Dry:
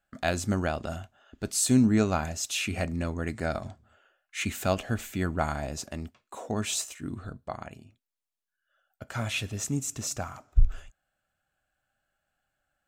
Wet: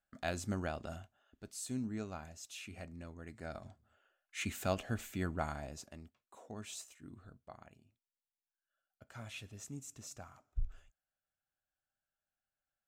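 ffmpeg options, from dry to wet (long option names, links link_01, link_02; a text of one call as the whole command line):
ffmpeg -i in.wav -af "afade=type=out:start_time=0.96:duration=0.5:silence=0.398107,afade=type=in:start_time=3.26:duration=1.12:silence=0.316228,afade=type=out:start_time=5.24:duration=0.81:silence=0.375837" out.wav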